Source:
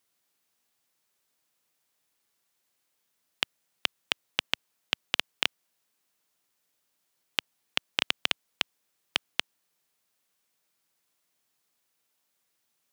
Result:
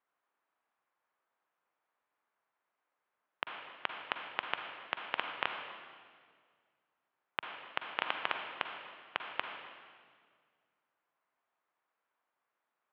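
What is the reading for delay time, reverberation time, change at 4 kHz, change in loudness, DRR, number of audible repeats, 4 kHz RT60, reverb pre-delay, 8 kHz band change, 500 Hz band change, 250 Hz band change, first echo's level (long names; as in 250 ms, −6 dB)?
no echo audible, 1.9 s, −13.0 dB, −8.0 dB, 3.5 dB, no echo audible, 1.7 s, 40 ms, below −35 dB, −1.0 dB, −7.0 dB, no echo audible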